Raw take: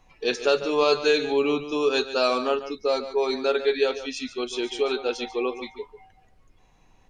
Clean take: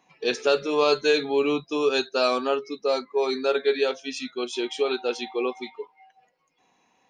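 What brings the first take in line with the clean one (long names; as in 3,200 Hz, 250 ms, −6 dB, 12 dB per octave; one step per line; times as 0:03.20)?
downward expander −49 dBFS, range −21 dB
echo removal 144 ms −12.5 dB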